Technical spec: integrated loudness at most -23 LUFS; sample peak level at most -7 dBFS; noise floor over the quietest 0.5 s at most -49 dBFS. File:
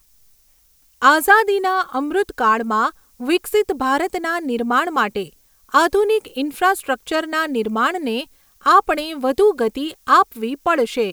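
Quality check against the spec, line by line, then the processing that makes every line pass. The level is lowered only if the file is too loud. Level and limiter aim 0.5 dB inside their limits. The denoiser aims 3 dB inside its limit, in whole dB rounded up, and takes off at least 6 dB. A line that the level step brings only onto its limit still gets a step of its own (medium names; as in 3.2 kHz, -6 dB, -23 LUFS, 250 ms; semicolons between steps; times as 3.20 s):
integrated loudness -18.0 LUFS: fail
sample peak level -1.5 dBFS: fail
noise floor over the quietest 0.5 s -56 dBFS: pass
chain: trim -5.5 dB; peak limiter -7.5 dBFS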